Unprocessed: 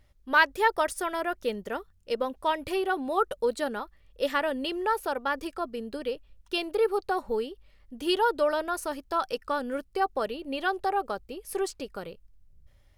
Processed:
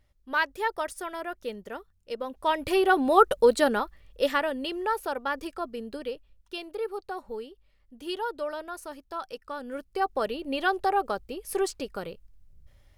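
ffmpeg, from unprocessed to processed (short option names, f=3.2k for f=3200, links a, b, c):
-af "volume=17.5dB,afade=t=in:st=2.23:d=0.78:silence=0.237137,afade=t=out:st=3.72:d=0.79:silence=0.375837,afade=t=out:st=5.89:d=0.68:silence=0.473151,afade=t=in:st=9.55:d=0.82:silence=0.316228"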